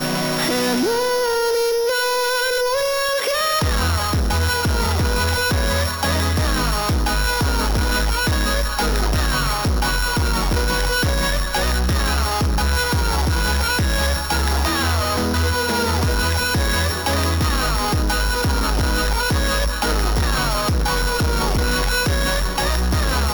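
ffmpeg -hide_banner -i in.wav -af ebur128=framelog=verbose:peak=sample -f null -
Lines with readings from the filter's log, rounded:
Integrated loudness:
  I:         -19.2 LUFS
  Threshold: -29.2 LUFS
Loudness range:
  LRA:         0.7 LU
  Threshold: -39.2 LUFS
  LRA low:   -19.5 LUFS
  LRA high:  -18.8 LUFS
Sample peak:
  Peak:      -15.3 dBFS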